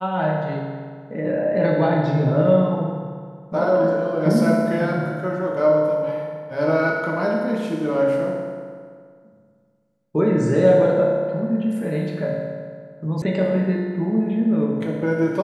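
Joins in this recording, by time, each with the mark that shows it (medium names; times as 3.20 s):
13.22 s: sound stops dead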